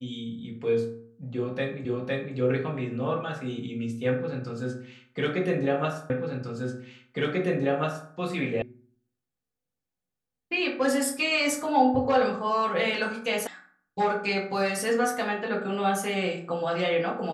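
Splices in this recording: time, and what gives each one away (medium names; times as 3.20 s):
1.85 s: repeat of the last 0.51 s
6.10 s: repeat of the last 1.99 s
8.62 s: sound stops dead
13.47 s: sound stops dead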